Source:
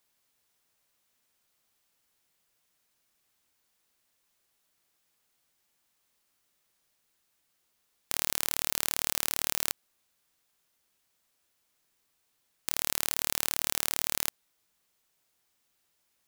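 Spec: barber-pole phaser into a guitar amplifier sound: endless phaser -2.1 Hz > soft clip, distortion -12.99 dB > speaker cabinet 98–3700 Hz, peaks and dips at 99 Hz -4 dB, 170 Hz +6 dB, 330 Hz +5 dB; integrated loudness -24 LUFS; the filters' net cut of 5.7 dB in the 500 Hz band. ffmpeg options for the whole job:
-filter_complex "[0:a]equalizer=f=500:t=o:g=-9,asplit=2[a][b];[b]afreqshift=-2.1[c];[a][c]amix=inputs=2:normalize=1,asoftclip=threshold=-11.5dB,highpass=98,equalizer=f=99:t=q:w=4:g=-4,equalizer=f=170:t=q:w=4:g=6,equalizer=f=330:t=q:w=4:g=5,lowpass=f=3.7k:w=0.5412,lowpass=f=3.7k:w=1.3066,volume=20.5dB"

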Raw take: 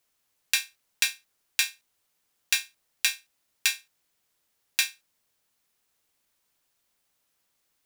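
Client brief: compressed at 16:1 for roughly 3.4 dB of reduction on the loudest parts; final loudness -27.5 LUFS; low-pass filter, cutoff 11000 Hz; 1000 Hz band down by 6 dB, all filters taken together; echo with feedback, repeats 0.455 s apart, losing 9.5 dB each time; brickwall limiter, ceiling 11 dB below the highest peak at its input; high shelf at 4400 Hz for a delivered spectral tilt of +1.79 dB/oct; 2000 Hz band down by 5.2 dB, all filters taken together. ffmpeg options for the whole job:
-af "lowpass=11k,equalizer=f=1k:t=o:g=-6,equalizer=f=2k:t=o:g=-4.5,highshelf=f=4.4k:g=-5,acompressor=threshold=-27dB:ratio=16,alimiter=limit=-20dB:level=0:latency=1,aecho=1:1:455|910|1365|1820:0.335|0.111|0.0365|0.012,volume=15.5dB"

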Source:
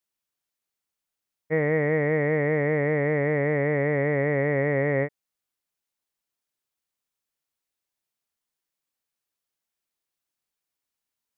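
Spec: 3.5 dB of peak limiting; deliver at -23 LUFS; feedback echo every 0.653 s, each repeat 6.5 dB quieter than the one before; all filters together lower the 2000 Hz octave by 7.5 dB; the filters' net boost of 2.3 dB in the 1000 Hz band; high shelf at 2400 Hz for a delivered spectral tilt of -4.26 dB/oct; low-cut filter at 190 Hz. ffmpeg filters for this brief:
-af "highpass=190,equalizer=f=1k:t=o:g=5.5,equalizer=f=2k:t=o:g=-7.5,highshelf=f=2.4k:g=-4,alimiter=limit=-18dB:level=0:latency=1,aecho=1:1:653|1306|1959|2612|3265|3918:0.473|0.222|0.105|0.0491|0.0231|0.0109,volume=3.5dB"

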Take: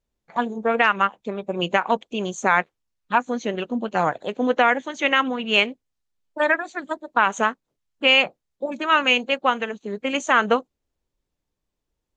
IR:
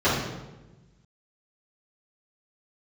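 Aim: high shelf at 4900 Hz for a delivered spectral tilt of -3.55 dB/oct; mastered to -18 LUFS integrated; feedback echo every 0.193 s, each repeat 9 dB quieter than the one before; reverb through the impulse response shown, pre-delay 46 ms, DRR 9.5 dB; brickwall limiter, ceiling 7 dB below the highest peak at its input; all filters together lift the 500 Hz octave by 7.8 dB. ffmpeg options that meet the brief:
-filter_complex "[0:a]equalizer=f=500:t=o:g=9,highshelf=f=4.9k:g=9,alimiter=limit=-6dB:level=0:latency=1,aecho=1:1:193|386|579|772:0.355|0.124|0.0435|0.0152,asplit=2[a][b];[1:a]atrim=start_sample=2205,adelay=46[c];[b][c]afir=irnorm=-1:irlink=0,volume=-28dB[d];[a][d]amix=inputs=2:normalize=0,volume=1dB"

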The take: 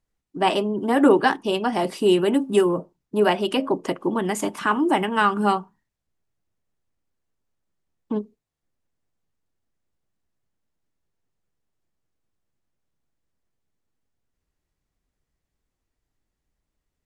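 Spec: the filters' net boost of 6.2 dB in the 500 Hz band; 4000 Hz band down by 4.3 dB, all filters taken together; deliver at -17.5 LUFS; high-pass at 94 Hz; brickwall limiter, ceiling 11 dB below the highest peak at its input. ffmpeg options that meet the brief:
-af "highpass=94,equalizer=f=500:t=o:g=8.5,equalizer=f=4k:t=o:g=-7.5,volume=3dB,alimiter=limit=-6.5dB:level=0:latency=1"

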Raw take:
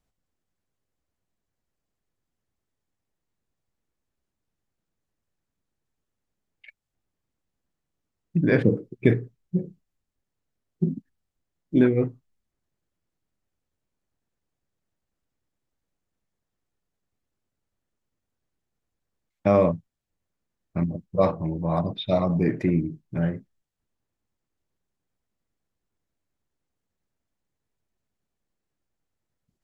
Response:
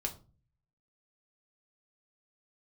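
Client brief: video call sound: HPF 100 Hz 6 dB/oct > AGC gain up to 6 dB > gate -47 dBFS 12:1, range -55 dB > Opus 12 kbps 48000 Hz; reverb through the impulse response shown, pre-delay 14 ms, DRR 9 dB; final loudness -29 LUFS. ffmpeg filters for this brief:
-filter_complex "[0:a]asplit=2[a][b];[1:a]atrim=start_sample=2205,adelay=14[c];[b][c]afir=irnorm=-1:irlink=0,volume=-10dB[d];[a][d]amix=inputs=2:normalize=0,highpass=f=100:p=1,dynaudnorm=m=6dB,agate=range=-55dB:threshold=-47dB:ratio=12,volume=-6.5dB" -ar 48000 -c:a libopus -b:a 12k

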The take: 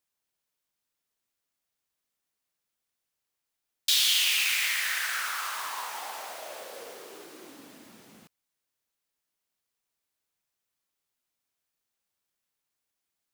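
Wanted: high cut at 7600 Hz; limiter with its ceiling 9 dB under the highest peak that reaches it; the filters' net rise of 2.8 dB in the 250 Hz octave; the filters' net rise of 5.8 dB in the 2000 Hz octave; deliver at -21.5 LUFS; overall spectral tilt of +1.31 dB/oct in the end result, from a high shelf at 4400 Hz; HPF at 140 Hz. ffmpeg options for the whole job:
-af "highpass=140,lowpass=7.6k,equalizer=f=250:t=o:g=4,equalizer=f=2k:t=o:g=8.5,highshelf=f=4.4k:g=-6,volume=7.5dB,alimiter=limit=-12.5dB:level=0:latency=1"

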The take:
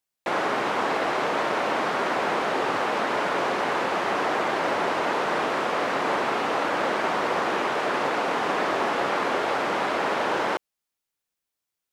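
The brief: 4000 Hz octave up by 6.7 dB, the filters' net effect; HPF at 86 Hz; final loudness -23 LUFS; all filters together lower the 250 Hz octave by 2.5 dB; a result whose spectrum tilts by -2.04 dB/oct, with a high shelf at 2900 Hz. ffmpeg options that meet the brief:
-af "highpass=86,equalizer=f=250:t=o:g=-3.5,highshelf=f=2.9k:g=5,equalizer=f=4k:t=o:g=5,volume=0.5dB"

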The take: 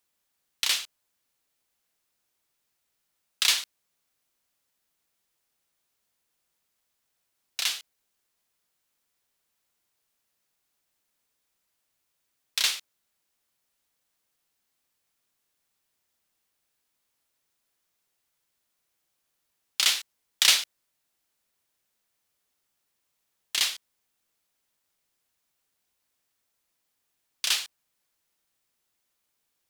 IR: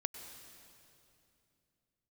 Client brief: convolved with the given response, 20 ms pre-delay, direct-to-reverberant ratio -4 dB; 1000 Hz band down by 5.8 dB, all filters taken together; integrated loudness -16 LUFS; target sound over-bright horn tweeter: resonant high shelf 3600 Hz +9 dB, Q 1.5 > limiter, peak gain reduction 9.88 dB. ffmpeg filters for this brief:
-filter_complex "[0:a]equalizer=f=1k:t=o:g=-7,asplit=2[a][b];[1:a]atrim=start_sample=2205,adelay=20[c];[b][c]afir=irnorm=-1:irlink=0,volume=4.5dB[d];[a][d]amix=inputs=2:normalize=0,highshelf=f=3.6k:t=q:w=1.5:g=9,volume=1.5dB,alimiter=limit=-1dB:level=0:latency=1"

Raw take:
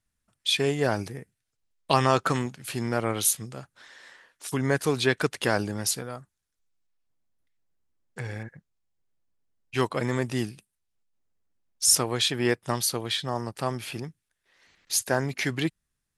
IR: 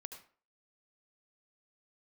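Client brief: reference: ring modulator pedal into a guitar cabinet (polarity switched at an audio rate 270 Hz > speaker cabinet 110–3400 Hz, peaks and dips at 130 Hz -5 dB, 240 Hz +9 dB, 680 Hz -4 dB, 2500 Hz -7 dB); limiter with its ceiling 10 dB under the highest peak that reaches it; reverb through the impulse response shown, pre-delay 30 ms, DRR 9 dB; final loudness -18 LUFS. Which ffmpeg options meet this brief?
-filter_complex "[0:a]alimiter=limit=-16dB:level=0:latency=1,asplit=2[a][b];[1:a]atrim=start_sample=2205,adelay=30[c];[b][c]afir=irnorm=-1:irlink=0,volume=-4.5dB[d];[a][d]amix=inputs=2:normalize=0,aeval=exprs='val(0)*sgn(sin(2*PI*270*n/s))':c=same,highpass=110,equalizer=f=130:t=q:w=4:g=-5,equalizer=f=240:t=q:w=4:g=9,equalizer=f=680:t=q:w=4:g=-4,equalizer=f=2.5k:t=q:w=4:g=-7,lowpass=f=3.4k:w=0.5412,lowpass=f=3.4k:w=1.3066,volume=14.5dB"

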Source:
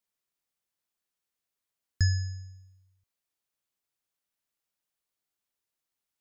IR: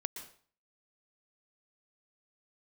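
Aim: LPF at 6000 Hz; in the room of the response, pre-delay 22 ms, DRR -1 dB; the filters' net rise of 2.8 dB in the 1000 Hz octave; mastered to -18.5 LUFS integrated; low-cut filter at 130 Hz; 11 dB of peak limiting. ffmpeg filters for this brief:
-filter_complex "[0:a]highpass=130,lowpass=6k,equalizer=f=1k:t=o:g=4,alimiter=level_in=5.5dB:limit=-24dB:level=0:latency=1,volume=-5.5dB,asplit=2[a][b];[1:a]atrim=start_sample=2205,adelay=22[c];[b][c]afir=irnorm=-1:irlink=0,volume=1dB[d];[a][d]amix=inputs=2:normalize=0,volume=18dB"

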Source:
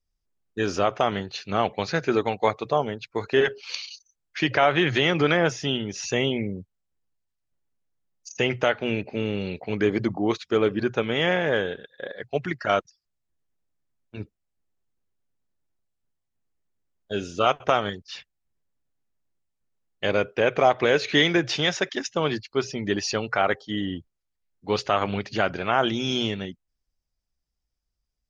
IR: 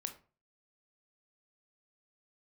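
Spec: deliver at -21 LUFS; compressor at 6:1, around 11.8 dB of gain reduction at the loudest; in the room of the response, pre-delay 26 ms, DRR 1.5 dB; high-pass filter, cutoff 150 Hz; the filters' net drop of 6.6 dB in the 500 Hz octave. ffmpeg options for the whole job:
-filter_complex "[0:a]highpass=150,equalizer=f=500:t=o:g=-8.5,acompressor=threshold=-30dB:ratio=6,asplit=2[a][b];[1:a]atrim=start_sample=2205,adelay=26[c];[b][c]afir=irnorm=-1:irlink=0,volume=0.5dB[d];[a][d]amix=inputs=2:normalize=0,volume=11.5dB"

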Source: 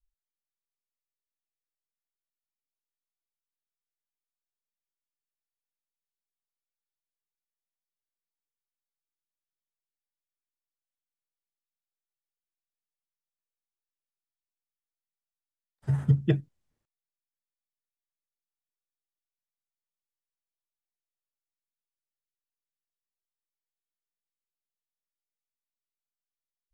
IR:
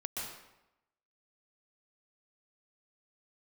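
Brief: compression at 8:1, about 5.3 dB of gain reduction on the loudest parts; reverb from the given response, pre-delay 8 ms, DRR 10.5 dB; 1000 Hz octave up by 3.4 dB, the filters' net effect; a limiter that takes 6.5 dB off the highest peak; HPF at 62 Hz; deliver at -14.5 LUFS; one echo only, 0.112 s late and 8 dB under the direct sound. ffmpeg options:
-filter_complex "[0:a]highpass=62,equalizer=f=1k:t=o:g=4.5,acompressor=threshold=-22dB:ratio=8,alimiter=limit=-22dB:level=0:latency=1,aecho=1:1:112:0.398,asplit=2[a][b];[1:a]atrim=start_sample=2205,adelay=8[c];[b][c]afir=irnorm=-1:irlink=0,volume=-12.5dB[d];[a][d]amix=inputs=2:normalize=0,volume=19dB"

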